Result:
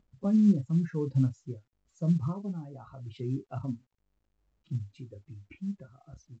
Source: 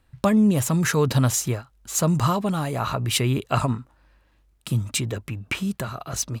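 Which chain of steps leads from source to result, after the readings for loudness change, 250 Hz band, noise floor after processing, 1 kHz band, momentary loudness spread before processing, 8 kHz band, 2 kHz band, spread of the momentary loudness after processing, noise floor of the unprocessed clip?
-6.5 dB, -5.5 dB, -78 dBFS, -22.0 dB, 11 LU, under -30 dB, under -25 dB, 22 LU, -62 dBFS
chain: expander on every frequency bin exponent 2; upward compressor, threshold -32 dBFS; band-pass filter 200 Hz, Q 1.5; doubling 30 ms -9 dB; trim -1 dB; µ-law 128 kbps 16 kHz

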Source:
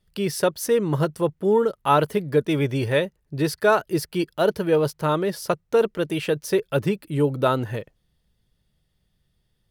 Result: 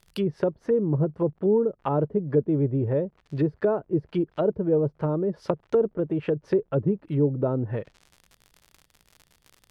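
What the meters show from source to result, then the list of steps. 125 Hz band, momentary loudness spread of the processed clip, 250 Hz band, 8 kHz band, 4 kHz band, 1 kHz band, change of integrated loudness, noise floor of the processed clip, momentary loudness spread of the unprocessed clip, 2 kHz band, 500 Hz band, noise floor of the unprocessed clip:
0.0 dB, 5 LU, -0.5 dB, under -20 dB, under -15 dB, -10.5 dB, -3.0 dB, -67 dBFS, 6 LU, -15.5 dB, -3.0 dB, -71 dBFS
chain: crackle 85 per s -37 dBFS; low-pass that closes with the level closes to 470 Hz, closed at -20 dBFS

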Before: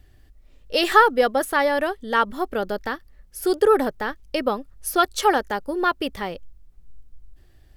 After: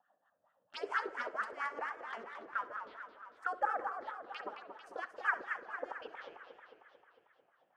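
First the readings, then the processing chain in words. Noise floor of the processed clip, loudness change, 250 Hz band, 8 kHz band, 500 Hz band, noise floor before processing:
-78 dBFS, -18.0 dB, -30.0 dB, under -30 dB, -24.0 dB, -53 dBFS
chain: local Wiener filter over 9 samples; high-pass 61 Hz 6 dB/octave; spectral gate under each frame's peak -15 dB weak; low-pass 8.8 kHz 12 dB/octave; tilt shelf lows -4.5 dB, about 640 Hz; in parallel at -1 dB: peak limiter -22.5 dBFS, peak gain reduction 11 dB; on the sum: rotary cabinet horn 6 Hz; wah-wah 4.4 Hz 410–1400 Hz, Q 3.6; touch-sensitive phaser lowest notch 360 Hz, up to 3.8 kHz, full sweep at -42 dBFS; on a send: flutter echo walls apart 11.1 m, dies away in 0.22 s; on the sum: spring tank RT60 2.9 s, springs 37 ms, chirp 50 ms, DRR 18 dB; modulated delay 224 ms, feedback 62%, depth 184 cents, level -8 dB; trim +3 dB

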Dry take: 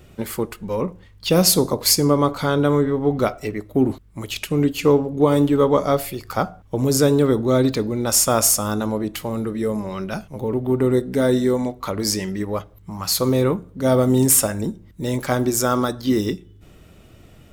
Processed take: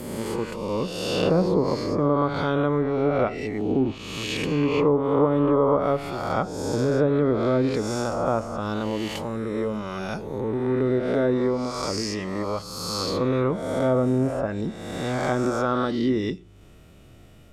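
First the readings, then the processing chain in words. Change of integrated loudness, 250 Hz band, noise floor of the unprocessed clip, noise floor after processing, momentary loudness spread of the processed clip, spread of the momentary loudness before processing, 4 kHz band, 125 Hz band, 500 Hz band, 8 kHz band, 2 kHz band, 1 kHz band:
-4.5 dB, -4.0 dB, -48 dBFS, -49 dBFS, 8 LU, 12 LU, -7.5 dB, -4.5 dB, -3.0 dB, -18.0 dB, -1.5 dB, -2.0 dB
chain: reverse spectral sustain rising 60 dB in 1.47 s; low-pass that closes with the level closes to 1.2 kHz, closed at -9 dBFS; trim -6 dB

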